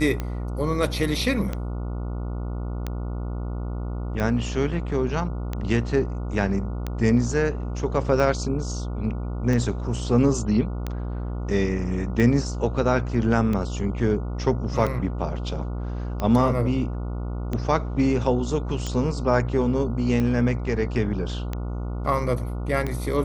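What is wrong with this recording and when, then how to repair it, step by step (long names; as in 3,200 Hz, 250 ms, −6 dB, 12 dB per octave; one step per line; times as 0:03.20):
mains buzz 60 Hz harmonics 24 −29 dBFS
scratch tick 45 rpm −15 dBFS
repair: click removal
hum removal 60 Hz, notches 24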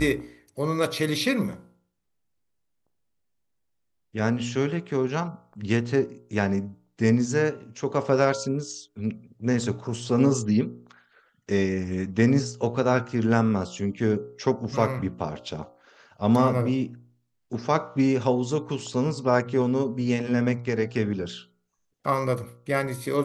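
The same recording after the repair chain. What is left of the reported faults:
none of them is left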